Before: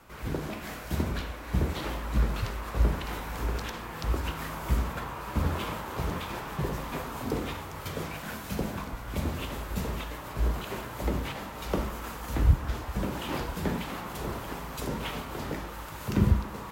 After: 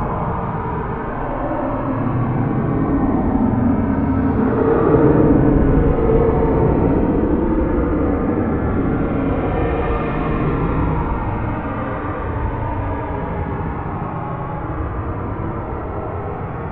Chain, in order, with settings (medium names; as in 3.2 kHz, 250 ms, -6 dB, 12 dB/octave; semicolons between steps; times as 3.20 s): low-pass 2.2 kHz 24 dB/octave; tilt shelf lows +6.5 dB, about 1.3 kHz; in parallel at -3 dB: sine folder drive 15 dB, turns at -3.5 dBFS; on the sum: Paulstretch 30×, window 0.05 s, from 7.16 s; reverberation RT60 0.35 s, pre-delay 7 ms, DRR 10.5 dB; trim -5.5 dB